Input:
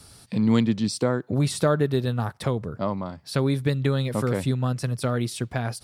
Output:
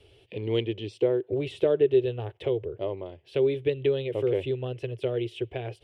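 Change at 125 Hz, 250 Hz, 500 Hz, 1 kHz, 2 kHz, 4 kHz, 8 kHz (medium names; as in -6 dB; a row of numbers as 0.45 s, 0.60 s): -10.5 dB, -8.5 dB, +3.0 dB, -12.0 dB, -7.5 dB, -5.5 dB, under -25 dB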